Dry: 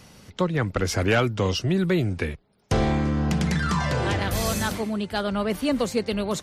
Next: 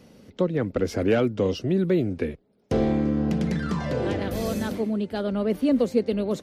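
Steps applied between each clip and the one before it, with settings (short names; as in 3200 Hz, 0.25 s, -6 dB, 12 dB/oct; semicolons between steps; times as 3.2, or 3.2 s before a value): graphic EQ 250/500/1000/8000 Hz +10/+9/-3/-5 dB; gain -7.5 dB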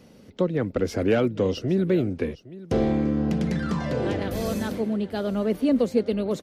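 echo 0.812 s -18 dB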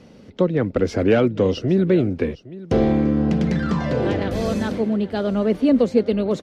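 air absorption 64 m; gain +5 dB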